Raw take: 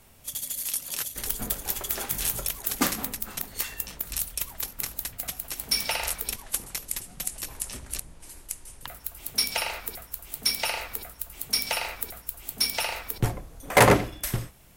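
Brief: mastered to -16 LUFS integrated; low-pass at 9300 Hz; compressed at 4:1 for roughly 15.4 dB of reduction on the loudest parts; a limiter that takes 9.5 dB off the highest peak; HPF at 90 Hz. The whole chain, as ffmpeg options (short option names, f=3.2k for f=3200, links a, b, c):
-af "highpass=90,lowpass=9.3k,acompressor=threshold=-32dB:ratio=4,volume=23dB,alimiter=limit=-1dB:level=0:latency=1"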